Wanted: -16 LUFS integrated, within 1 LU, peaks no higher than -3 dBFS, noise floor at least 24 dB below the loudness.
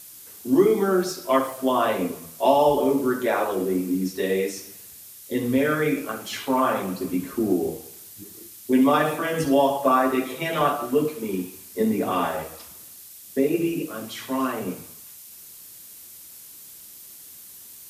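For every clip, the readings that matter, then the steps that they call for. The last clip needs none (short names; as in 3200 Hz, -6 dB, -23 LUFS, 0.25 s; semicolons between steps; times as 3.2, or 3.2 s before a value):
noise floor -45 dBFS; noise floor target -48 dBFS; loudness -23.5 LUFS; peak -6.0 dBFS; loudness target -16.0 LUFS
-> denoiser 6 dB, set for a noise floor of -45 dBFS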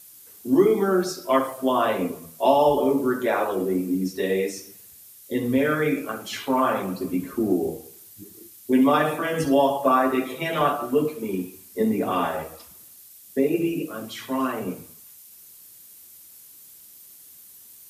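noise floor -48 dBFS; loudness -23.5 LUFS; peak -6.0 dBFS; loudness target -16.0 LUFS
-> gain +7.5 dB; limiter -3 dBFS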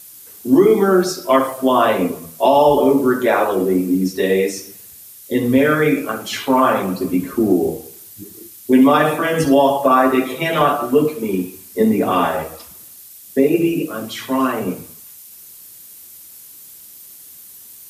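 loudness -16.5 LUFS; peak -3.0 dBFS; noise floor -41 dBFS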